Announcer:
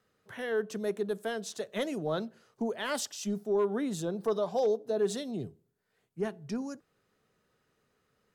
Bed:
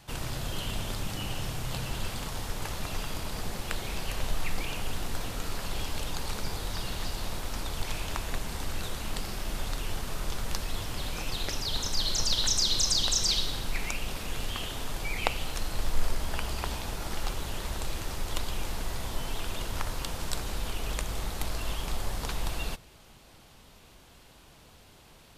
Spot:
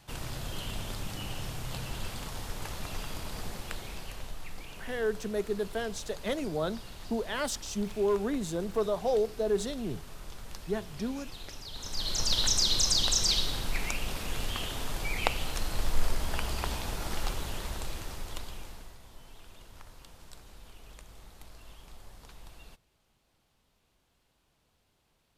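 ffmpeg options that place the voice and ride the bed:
-filter_complex "[0:a]adelay=4500,volume=0.5dB[a];[1:a]volume=8dB,afade=t=out:st=3.43:d=0.94:silence=0.398107,afade=t=in:st=11.75:d=0.61:silence=0.266073,afade=t=out:st=17.21:d=1.77:silence=0.125893[b];[a][b]amix=inputs=2:normalize=0"

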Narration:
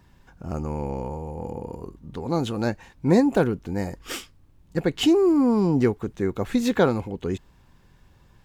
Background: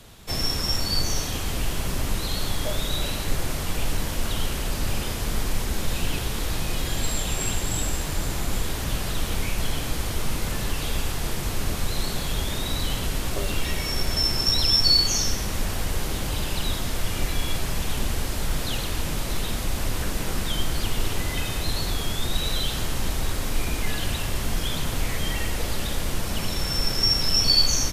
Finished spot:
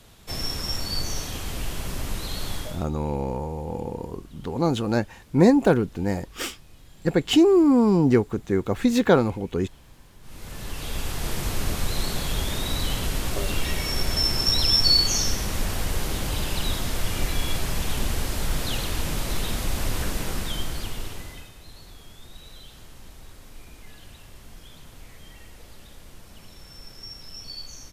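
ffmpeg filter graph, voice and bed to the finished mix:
-filter_complex "[0:a]adelay=2300,volume=2dB[a];[1:a]volume=22dB,afade=t=out:st=2.56:d=0.3:silence=0.0794328,afade=t=in:st=10.21:d=1.18:silence=0.0501187,afade=t=out:st=20.02:d=1.5:silence=0.105925[b];[a][b]amix=inputs=2:normalize=0"

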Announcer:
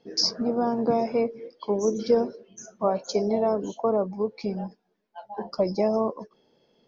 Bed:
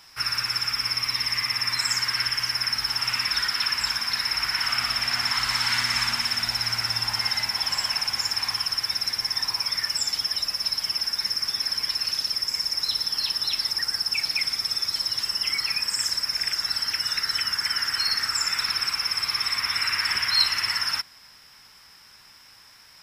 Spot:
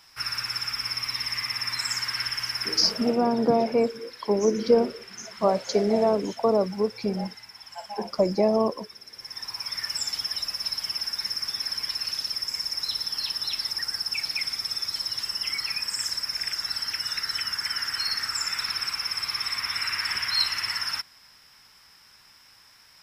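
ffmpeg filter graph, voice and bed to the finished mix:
-filter_complex "[0:a]adelay=2600,volume=2dB[a];[1:a]volume=12dB,afade=t=out:st=2.72:d=0.46:silence=0.16788,afade=t=in:st=9.09:d=0.86:silence=0.158489[b];[a][b]amix=inputs=2:normalize=0"

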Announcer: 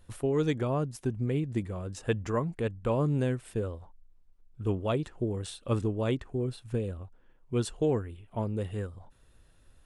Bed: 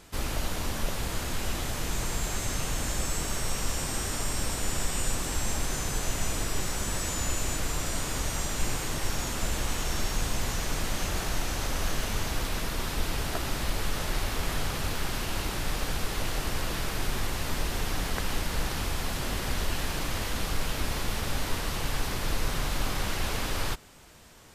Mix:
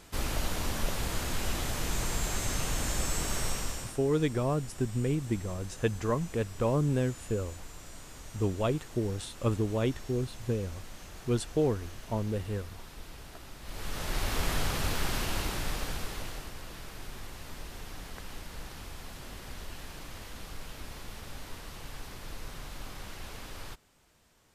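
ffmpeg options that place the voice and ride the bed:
-filter_complex "[0:a]adelay=3750,volume=0dB[a];[1:a]volume=15.5dB,afade=t=out:st=3.44:d=0.55:silence=0.16788,afade=t=in:st=13.62:d=0.75:silence=0.149624,afade=t=out:st=15.18:d=1.35:silence=0.223872[b];[a][b]amix=inputs=2:normalize=0"

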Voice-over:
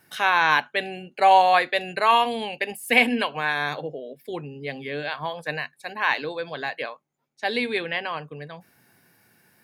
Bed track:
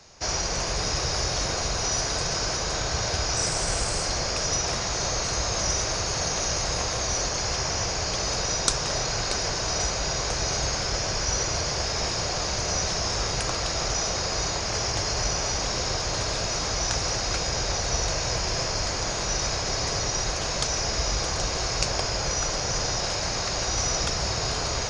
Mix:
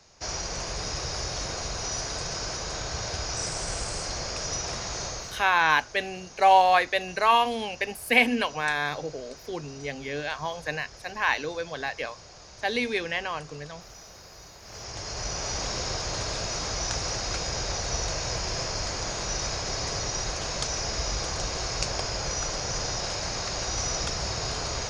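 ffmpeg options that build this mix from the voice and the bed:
-filter_complex "[0:a]adelay=5200,volume=-2dB[a];[1:a]volume=11.5dB,afade=t=out:st=4.99:d=0.49:silence=0.177828,afade=t=in:st=14.6:d=0.99:silence=0.141254[b];[a][b]amix=inputs=2:normalize=0"

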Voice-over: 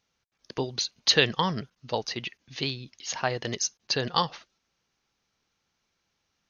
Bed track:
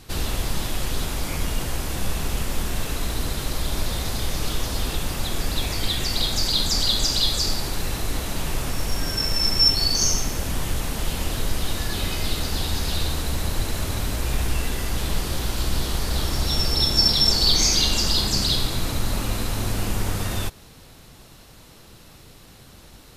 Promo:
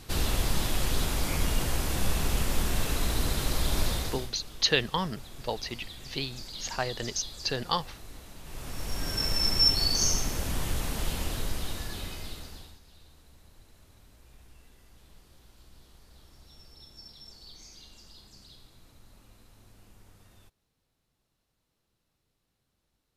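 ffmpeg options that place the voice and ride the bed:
-filter_complex "[0:a]adelay=3550,volume=-3.5dB[a];[1:a]volume=13dB,afade=t=out:st=3.86:d=0.46:silence=0.125893,afade=t=in:st=8.43:d=0.81:silence=0.177828,afade=t=out:st=11.02:d=1.77:silence=0.0473151[b];[a][b]amix=inputs=2:normalize=0"

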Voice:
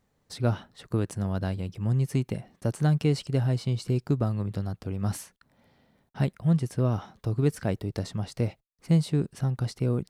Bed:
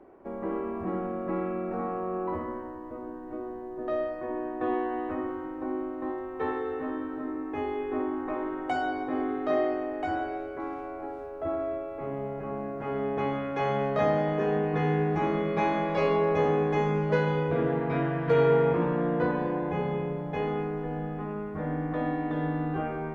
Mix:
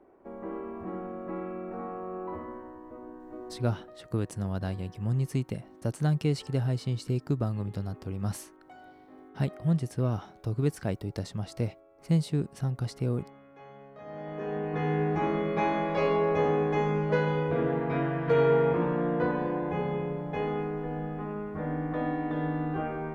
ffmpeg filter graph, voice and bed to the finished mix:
-filter_complex "[0:a]adelay=3200,volume=-3dB[a];[1:a]volume=15.5dB,afade=t=out:st=3.6:d=0.32:silence=0.149624,afade=t=in:st=14.04:d=1.01:silence=0.0891251[b];[a][b]amix=inputs=2:normalize=0"

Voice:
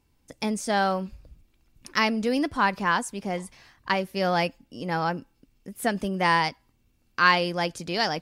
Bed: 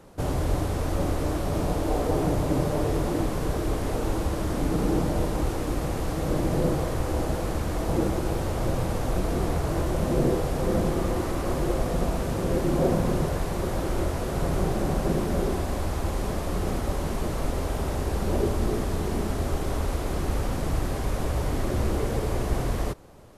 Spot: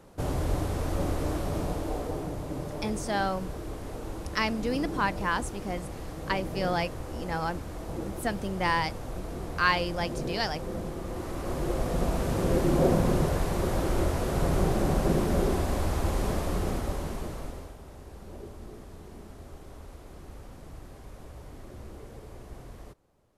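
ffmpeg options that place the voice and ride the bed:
-filter_complex "[0:a]adelay=2400,volume=-5dB[a];[1:a]volume=7.5dB,afade=t=out:st=1.37:d=0.92:silence=0.421697,afade=t=in:st=11.03:d=1.38:silence=0.298538,afade=t=out:st=16.31:d=1.45:silence=0.11885[b];[a][b]amix=inputs=2:normalize=0"

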